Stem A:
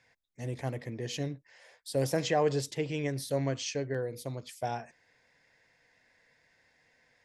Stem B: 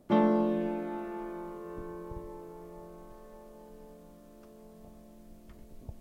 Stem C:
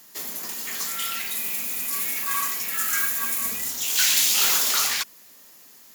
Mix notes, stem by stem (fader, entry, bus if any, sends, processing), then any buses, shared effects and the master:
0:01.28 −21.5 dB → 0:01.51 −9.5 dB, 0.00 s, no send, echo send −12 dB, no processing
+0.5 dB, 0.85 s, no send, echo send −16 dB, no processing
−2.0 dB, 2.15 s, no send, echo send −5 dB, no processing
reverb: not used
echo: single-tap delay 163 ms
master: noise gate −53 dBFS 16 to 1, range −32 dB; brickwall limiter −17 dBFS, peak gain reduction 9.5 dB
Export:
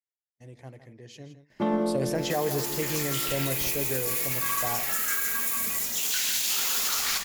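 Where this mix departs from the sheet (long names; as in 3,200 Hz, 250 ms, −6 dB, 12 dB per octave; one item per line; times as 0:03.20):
stem A −21.5 dB → −10.5 dB
stem B: entry 0.85 s → 1.50 s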